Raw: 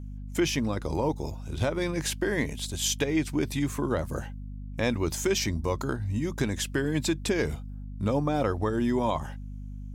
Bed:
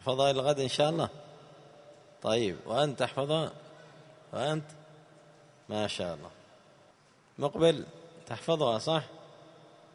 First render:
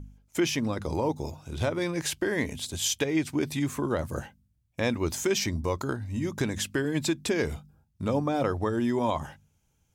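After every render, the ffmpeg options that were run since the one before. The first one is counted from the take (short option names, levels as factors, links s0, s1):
-af "bandreject=f=50:t=h:w=4,bandreject=f=100:t=h:w=4,bandreject=f=150:t=h:w=4,bandreject=f=200:t=h:w=4,bandreject=f=250:t=h:w=4"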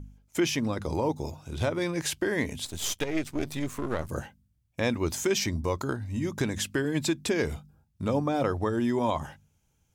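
-filter_complex "[0:a]asettb=1/sr,asplit=3[s0][s1][s2];[s0]atrim=end=2.654[s3];[s1]atrim=start=2.65:end=4.09,asetpts=PTS-STARTPTS,afade=t=in:d=0.004:c=qsin,afade=t=out:st=1.436:d=0.004:c=qsin,aeval=exprs='if(lt(val(0),0),0.251*val(0),val(0))':c=same[s4];[s2]atrim=start=4.086[s5];[s3][s4]acrossfade=d=0.004:c1=hsin:c2=qsin[s6];[s6][s5]acrossfade=d=0.004:c1=qsin:c2=hsin"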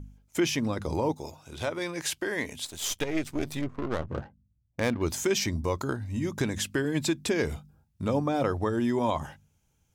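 -filter_complex "[0:a]asettb=1/sr,asplit=3[s0][s1][s2];[s0]atrim=end=1.144[s3];[s1]atrim=start=1.14:end=2.91,asetpts=PTS-STARTPTS,afade=t=in:d=0.004:c=qsin,afade=t=out:st=1.766:d=0.004:c=qsin,lowshelf=f=300:g=-10.5[s4];[s2]atrim=start=2.906[s5];[s3][s4]acrossfade=d=0.004:c1=hsin:c2=qsin[s6];[s6][s5]acrossfade=d=0.004:c1=qsin:c2=hsin,asettb=1/sr,asplit=3[s7][s8][s9];[s7]atrim=end=3.614[s10];[s8]atrim=start=3.61:end=5.02,asetpts=PTS-STARTPTS,afade=t=in:d=0.004:c=qsin,afade=t=out:st=1.406:d=0.004:c=qsin,adynamicsmooth=sensitivity=5:basefreq=530[s11];[s9]atrim=start=5.016[s12];[s10][s11]acrossfade=d=0.004:c1=hsin:c2=qsin[s13];[s13][s12]acrossfade=d=0.004:c1=qsin:c2=hsin"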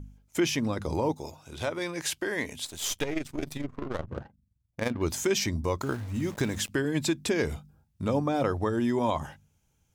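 -filter_complex "[0:a]asettb=1/sr,asplit=3[s0][s1][s2];[s0]atrim=end=3.134[s3];[s1]atrim=start=3.13:end=4.96,asetpts=PTS-STARTPTS,afade=t=in:d=0.004:c=qsin,afade=t=out:st=1.826:d=0.004:c=qsin,tremolo=f=23:d=0.667[s4];[s2]atrim=start=4.956[s5];[s3][s4]acrossfade=d=0.004:c1=hsin:c2=qsin[s6];[s6][s5]acrossfade=d=0.004:c1=qsin:c2=hsin,asettb=1/sr,asplit=3[s7][s8][s9];[s7]atrim=end=5.824[s10];[s8]atrim=start=5.82:end=6.69,asetpts=PTS-STARTPTS,afade=t=in:d=0.004:c=qsin,afade=t=out:st=0.866:d=0.004:c=qsin,aeval=exprs='val(0)*gte(abs(val(0)),0.00841)':c=same[s11];[s9]atrim=start=6.686[s12];[s10][s11]acrossfade=d=0.004:c1=hsin:c2=qsin[s13];[s13][s12]acrossfade=d=0.004:c1=qsin:c2=hsin"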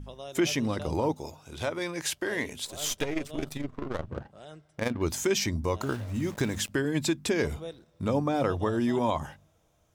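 -filter_complex "[1:a]volume=0.158[s0];[0:a][s0]amix=inputs=2:normalize=0"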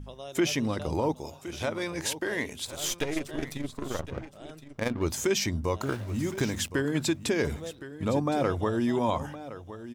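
-af "aecho=1:1:1065:0.2"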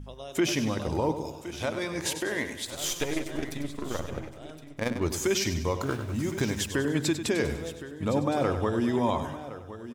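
-af "aecho=1:1:98|196|294|392|490:0.316|0.158|0.0791|0.0395|0.0198"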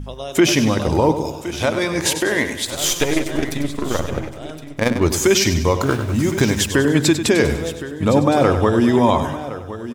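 -af "volume=3.76,alimiter=limit=0.708:level=0:latency=1"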